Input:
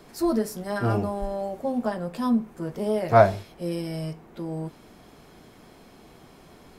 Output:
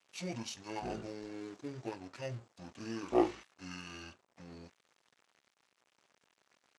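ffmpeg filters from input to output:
ffmpeg -i in.wav -af "aeval=exprs='sgn(val(0))*max(abs(val(0))-0.00501,0)':channel_layout=same,asetrate=23361,aresample=44100,atempo=1.88775,highpass=frequency=1300:poles=1,volume=-1dB" out.wav

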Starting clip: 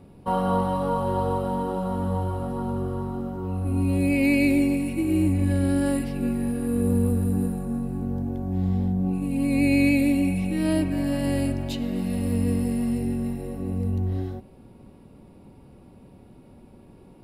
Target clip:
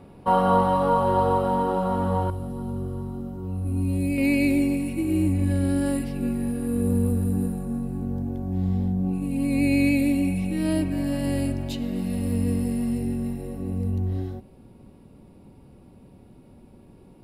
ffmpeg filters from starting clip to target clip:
ffmpeg -i in.wav -af "asetnsamples=nb_out_samples=441:pad=0,asendcmd='2.3 equalizer g -9.5;4.18 equalizer g -2.5',equalizer=frequency=1200:width=0.36:gain=6" out.wav

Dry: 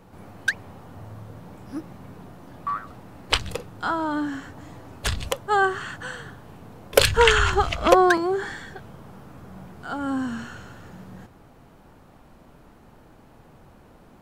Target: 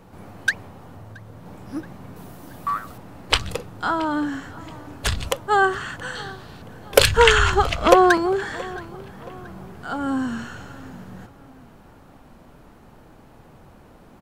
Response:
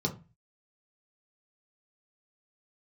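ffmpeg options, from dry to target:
-filter_complex "[0:a]asettb=1/sr,asplit=3[link_01][link_02][link_03];[link_01]atrim=end=6.154[link_04];[link_02]atrim=start=6.15:end=6.62,asetpts=PTS-STARTPTS,afade=type=in:duration=0.004:curve=qsin,afade=type=out:start_time=0.466:duration=0.004:curve=qsin,equalizer=frequency=4200:width_type=o:width=0.82:gain=14[link_05];[link_03]atrim=start=6.616[link_06];[link_04][link_05]acrossfade=duration=0.004:curve1=hsin:curve2=qsin[link_07];[link_07][link_06]acrossfade=duration=0.004:curve1=qsin:curve2=hsin,asplit=2[link_08][link_09];[link_09]adelay=675,lowpass=frequency=4600:poles=1,volume=-20dB,asplit=2[link_10][link_11];[link_11]adelay=675,lowpass=frequency=4600:poles=1,volume=0.43,asplit=2[link_12][link_13];[link_13]adelay=675,lowpass=frequency=4600:poles=1,volume=0.43[link_14];[link_08][link_10][link_12][link_14]amix=inputs=4:normalize=0,asettb=1/sr,asplit=3[link_15][link_16][link_17];[link_15]atrim=end=0.654[link_18];[link_16]atrim=start=0.65:end=1.46,asetpts=PTS-STARTPTS,afade=type=in:duration=0.004:curve=qsin,afade=type=out:start_time=0.806:duration=0.004:curve=qsin,acompressor=threshold=-40dB:ratio=6[link_19];[link_17]atrim=start=1.456[link_20];[link_18][link_19]acrossfade=duration=0.004:curve1=hsin:curve2=qsin[link_21];[link_21][link_20]acrossfade=duration=0.004:curve1=qsin:curve2=hsin,asettb=1/sr,asplit=3[link_22][link_23][link_24];[link_22]atrim=end=2.164[link_25];[link_23]atrim=start=2.16:end=2.98,asetpts=PTS-STARTPTS,afade=type=in:duration=0.004:curve=qsin,afade=type=out:start_time=0.816:duration=0.004:curve=qsin,aemphasis=mode=production:type=50kf[link_26];[link_24]atrim=start=2.976[link_27];[link_25][link_26]acrossfade=duration=0.004:curve1=hsin:curve2=qsin[link_28];[link_28][link_27]acrossfade=duration=0.004:curve1=qsin:curve2=hsin,volume=2.5dB"

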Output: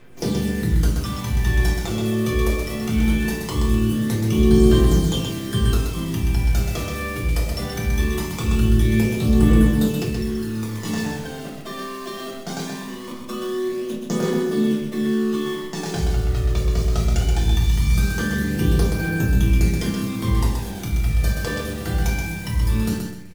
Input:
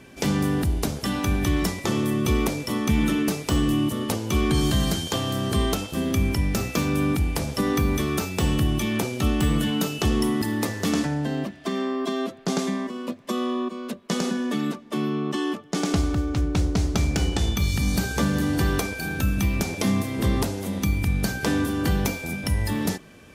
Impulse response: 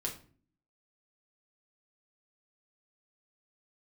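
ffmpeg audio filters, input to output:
-filter_complex "[0:a]bandreject=frequency=48.8:width_type=h:width=4,bandreject=frequency=97.6:width_type=h:width=4,bandreject=frequency=146.4:width_type=h:width=4,bandreject=frequency=195.2:width_type=h:width=4,bandreject=frequency=244:width_type=h:width=4,bandreject=frequency=292.8:width_type=h:width=4,bandreject=frequency=341.6:width_type=h:width=4,bandreject=frequency=390.4:width_type=h:width=4,asettb=1/sr,asplit=3[link_01][link_02][link_03];[link_01]atrim=end=10.034[link_04];[link_02]atrim=start=10.03:end=10.85,asetpts=PTS-STARTPTS,afade=type=in:duration=0.004:curve=qsin,afade=type=out:start_time=0.816:duration=0.004:curve=qsin,acompressor=threshold=-28dB:ratio=12[link_05];[link_03]atrim=start=10.846[link_06];[link_04][link_05]acrossfade=duration=0.004:curve1=hsin:curve2=qsin[link_07];[link_07][link_06]acrossfade=duration=0.004:curve1=qsin:curve2=hsin,acrusher=bits=7:dc=4:mix=0:aa=0.000001,aphaser=in_gain=1:out_gain=1:delay=1.8:decay=0.54:speed=0.21:type=triangular,aecho=1:1:127|254|381|508:0.562|0.18|0.0576|0.0184[link_08];[1:a]atrim=start_sample=2205[link_09];[link_08][link_09]afir=irnorm=-1:irlink=0,volume=-4.5dB"

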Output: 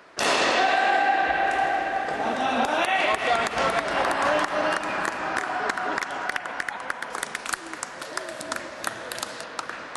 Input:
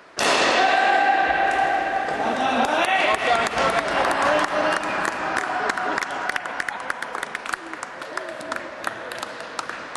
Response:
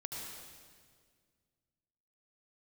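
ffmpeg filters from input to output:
-filter_complex "[0:a]asettb=1/sr,asplit=3[link_01][link_02][link_03];[link_01]atrim=end=7.104[link_04];[link_02]atrim=start=7.1:end=9.44,asetpts=PTS-STARTPTS,afade=type=in:duration=0.004:curve=qsin,afade=type=out:start_time=2.336:duration=0.004:curve=qsin,bass=frequency=250:gain=3,treble=frequency=4000:gain=10[link_05];[link_03]atrim=start=9.436[link_06];[link_04][link_05]acrossfade=duration=0.004:curve1=hsin:curve2=qsin[link_07];[link_07][link_06]acrossfade=duration=0.004:curve1=qsin:curve2=hsin,volume=-3dB"

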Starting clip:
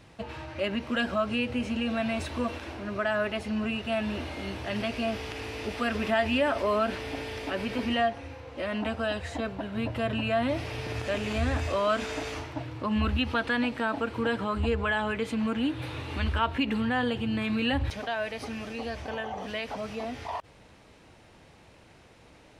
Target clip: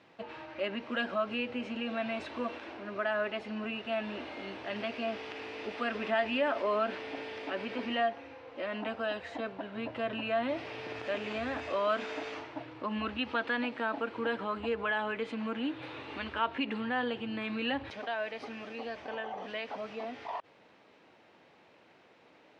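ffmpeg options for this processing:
ffmpeg -i in.wav -af "highpass=260,lowpass=3700,volume=-3.5dB" out.wav

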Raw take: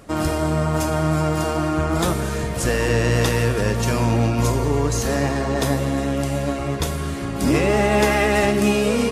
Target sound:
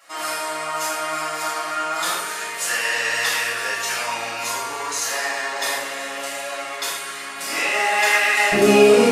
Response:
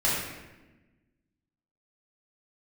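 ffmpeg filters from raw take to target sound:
-filter_complex "[0:a]asetnsamples=nb_out_samples=441:pad=0,asendcmd='8.52 highpass f 240',highpass=1300[link_01];[1:a]atrim=start_sample=2205,afade=type=out:start_time=0.2:duration=0.01,atrim=end_sample=9261[link_02];[link_01][link_02]afir=irnorm=-1:irlink=0,volume=-5.5dB"

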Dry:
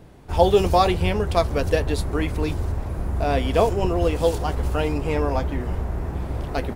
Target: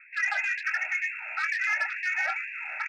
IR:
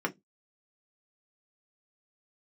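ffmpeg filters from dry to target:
-filter_complex "[0:a]asetrate=103194,aresample=44100,highpass=frequency=300:width=0.5412,highpass=frequency=300:width=1.3066,lowpass=frequency=2500:width_type=q:width=0.5098,lowpass=frequency=2500:width_type=q:width=0.6013,lowpass=frequency=2500:width_type=q:width=0.9,lowpass=frequency=2500:width_type=q:width=2.563,afreqshift=-2900,alimiter=limit=-12.5dB:level=0:latency=1:release=71,asplit=2[link_01][link_02];[link_02]adelay=24,volume=-8.5dB[link_03];[link_01][link_03]amix=inputs=2:normalize=0,asplit=2[link_04][link_05];[1:a]atrim=start_sample=2205,asetrate=25578,aresample=44100,highshelf=frequency=2800:gain=10[link_06];[link_05][link_06]afir=irnorm=-1:irlink=0,volume=-19dB[link_07];[link_04][link_07]amix=inputs=2:normalize=0,asoftclip=type=tanh:threshold=-15.5dB,asuperstop=centerf=1100:order=8:qfactor=3.4,afftfilt=real='re*gte(b*sr/1024,550*pow(1600/550,0.5+0.5*sin(2*PI*2.1*pts/sr)))':imag='im*gte(b*sr/1024,550*pow(1600/550,0.5+0.5*sin(2*PI*2.1*pts/sr)))':win_size=1024:overlap=0.75,volume=-4dB"

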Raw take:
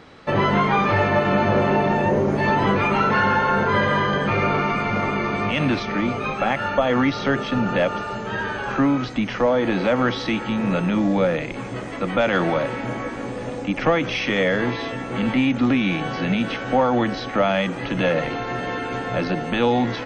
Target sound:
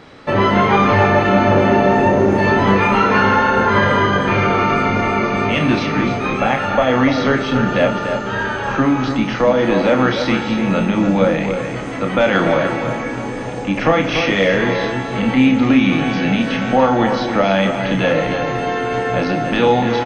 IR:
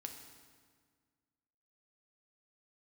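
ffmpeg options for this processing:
-filter_complex "[0:a]asplit=2[link_01][link_02];[link_02]adelay=291.5,volume=-7dB,highshelf=frequency=4000:gain=-6.56[link_03];[link_01][link_03]amix=inputs=2:normalize=0,asplit=2[link_04][link_05];[1:a]atrim=start_sample=2205,adelay=31[link_06];[link_05][link_06]afir=irnorm=-1:irlink=0,volume=-1.5dB[link_07];[link_04][link_07]amix=inputs=2:normalize=0,volume=3.5dB"

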